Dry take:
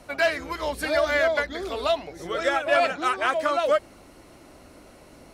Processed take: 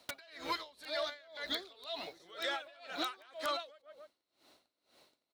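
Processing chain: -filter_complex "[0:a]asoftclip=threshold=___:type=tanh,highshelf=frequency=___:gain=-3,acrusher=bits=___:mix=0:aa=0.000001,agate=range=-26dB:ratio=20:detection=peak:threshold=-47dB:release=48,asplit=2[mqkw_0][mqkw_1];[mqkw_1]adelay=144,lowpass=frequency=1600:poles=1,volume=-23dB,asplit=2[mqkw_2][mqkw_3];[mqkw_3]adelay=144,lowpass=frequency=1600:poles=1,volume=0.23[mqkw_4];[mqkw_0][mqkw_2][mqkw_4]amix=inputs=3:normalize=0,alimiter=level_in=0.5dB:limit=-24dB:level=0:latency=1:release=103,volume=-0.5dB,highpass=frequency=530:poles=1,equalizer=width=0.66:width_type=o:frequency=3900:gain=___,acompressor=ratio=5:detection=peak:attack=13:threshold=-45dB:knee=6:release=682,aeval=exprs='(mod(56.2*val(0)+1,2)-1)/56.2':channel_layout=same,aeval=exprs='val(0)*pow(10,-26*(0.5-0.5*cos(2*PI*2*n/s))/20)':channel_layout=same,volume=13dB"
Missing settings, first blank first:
-12.5dB, 2500, 9, 15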